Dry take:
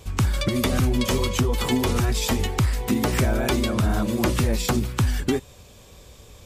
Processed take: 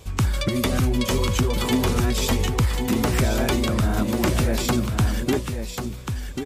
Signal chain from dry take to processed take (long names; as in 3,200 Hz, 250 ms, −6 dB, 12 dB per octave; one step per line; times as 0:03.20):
single-tap delay 1,090 ms −7 dB